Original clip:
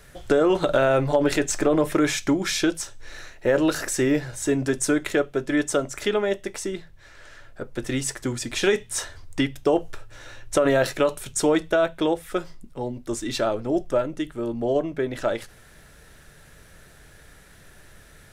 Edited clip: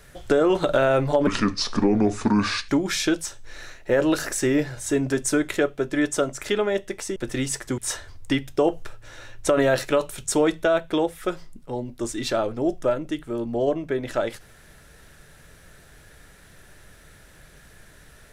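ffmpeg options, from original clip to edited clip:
-filter_complex "[0:a]asplit=5[a][b][c][d][e];[a]atrim=end=1.274[f];[b]atrim=start=1.27:end=2.25,asetpts=PTS-STARTPTS,asetrate=30429,aresample=44100[g];[c]atrim=start=2.246:end=6.722[h];[d]atrim=start=7.708:end=8.332[i];[e]atrim=start=8.858[j];[f][g]acrossfade=d=0.004:c1=hsin:c2=hsin[k];[k][h]acrossfade=d=0.004:c1=hsin:c2=hsin[l];[l][i]acrossfade=d=0.004:c1=hsin:c2=hsin[m];[m][j]acrossfade=d=0.004:c1=hsin:c2=hsin"

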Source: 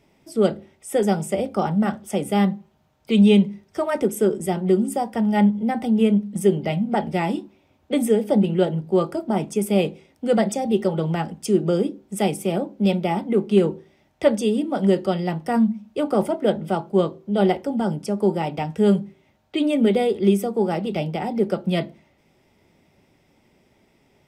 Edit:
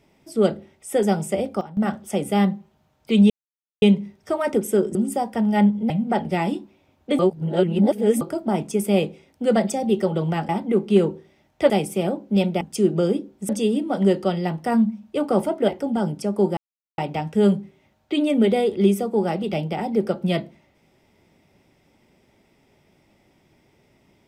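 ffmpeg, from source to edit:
-filter_complex "[0:a]asplit=14[a][b][c][d][e][f][g][h][i][j][k][l][m][n];[a]atrim=end=1.61,asetpts=PTS-STARTPTS,afade=t=out:st=1.29:d=0.32:c=log:silence=0.16788[o];[b]atrim=start=1.61:end=1.77,asetpts=PTS-STARTPTS,volume=-15.5dB[p];[c]atrim=start=1.77:end=3.3,asetpts=PTS-STARTPTS,afade=t=in:d=0.32:c=log:silence=0.16788,afade=t=out:st=1.526:d=0.004:c=hsin,apad=pad_dur=0.52[q];[d]atrim=start=3.3:end=4.432,asetpts=PTS-STARTPTS,afade=t=in:d=0.004:c=hsin[r];[e]atrim=start=4.748:end=5.702[s];[f]atrim=start=6.718:end=8.012[t];[g]atrim=start=8.008:end=9.032,asetpts=PTS-STARTPTS,areverse[u];[h]atrim=start=9.028:end=11.312[v];[i]atrim=start=13.098:end=14.312[w];[j]atrim=start=12.188:end=13.102[x];[k]atrim=start=11.308:end=12.192[y];[l]atrim=start=14.308:end=16.502[z];[m]atrim=start=17.518:end=18.41,asetpts=PTS-STARTPTS,afade=t=out:st=0.888:d=0.004:c=hsin,apad=pad_dur=0.41[aa];[n]atrim=start=18.41,asetpts=PTS-STARTPTS,afade=t=in:d=0.004:c=hsin[ab];[o][p][q][r]concat=n=4:v=0:a=1[ac];[ac][s]acrossfade=d=0.004:c1=hsin:c2=hsin[ad];[ad][t]acrossfade=d=0.004:c1=hsin:c2=hsin[ae];[ae][u]acrossfade=d=0.004:c1=hsin:c2=hsin[af];[af][v]acrossfade=d=0.004:c1=hsin:c2=hsin[ag];[ag][w]acrossfade=d=0.004:c1=hsin:c2=hsin[ah];[ah][x]acrossfade=d=0.004:c1=hsin:c2=hsin[ai];[ai][y]acrossfade=d=0.004:c1=hsin:c2=hsin[aj];[aj][z]acrossfade=d=0.004:c1=hsin:c2=hsin[ak];[aa][ab]concat=n=2:v=0:a=1[al];[ak][al]acrossfade=d=0.004:c1=hsin:c2=hsin"

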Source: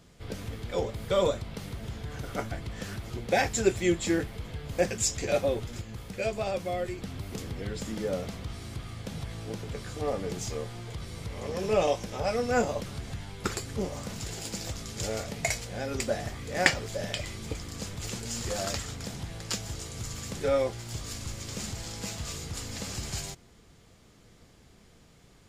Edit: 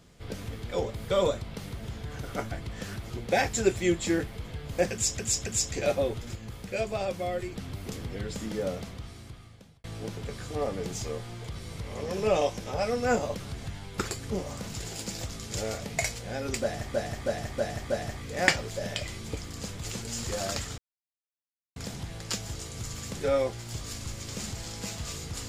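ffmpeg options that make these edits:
-filter_complex "[0:a]asplit=9[a][b][c][d][e][f][g][h][i];[a]atrim=end=5.192[j];[b]atrim=start=4.918:end=5.192[k];[c]atrim=start=4.918:end=9.3,asetpts=PTS-STARTPTS,afade=t=out:st=3.192:d=1.19[l];[d]atrim=start=9.3:end=16.402,asetpts=PTS-STARTPTS,afade=t=in:d=0.004:c=hsin[m];[e]atrim=start=16.078:end=16.402[n];[f]atrim=start=16.078:end=16.402[o];[g]atrim=start=16.078:end=16.402[p];[h]atrim=start=16.078:end=18.96,asetpts=PTS-STARTPTS,afade=t=out:st=2.878:d=0.004:c=hsin,apad=pad_dur=0.98[q];[i]atrim=start=18.96,asetpts=PTS-STARTPTS,afade=t=in:d=0.004:c=hsin[r];[j][k]acrossfade=d=0.004:c1=hsin:c2=hsin[s];[l][m]concat=n=2:v=0:a=1[t];[s][t]acrossfade=d=0.004:c1=hsin:c2=hsin[u];[u][n]acrossfade=d=0.004:c1=hsin:c2=hsin[v];[v][o]acrossfade=d=0.004:c1=hsin:c2=hsin[w];[w][p]acrossfade=d=0.004:c1=hsin:c2=hsin[x];[q][r]concat=n=2:v=0:a=1[y];[x][y]acrossfade=d=0.004:c1=hsin:c2=hsin"

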